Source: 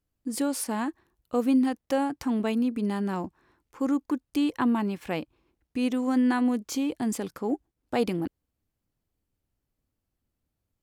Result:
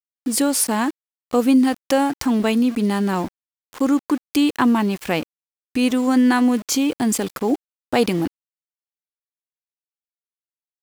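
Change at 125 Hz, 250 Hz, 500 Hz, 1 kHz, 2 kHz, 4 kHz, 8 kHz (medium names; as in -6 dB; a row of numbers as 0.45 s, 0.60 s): +8.0 dB, +8.0 dB, +8.0 dB, +9.0 dB, +10.5 dB, +12.5 dB, +13.5 dB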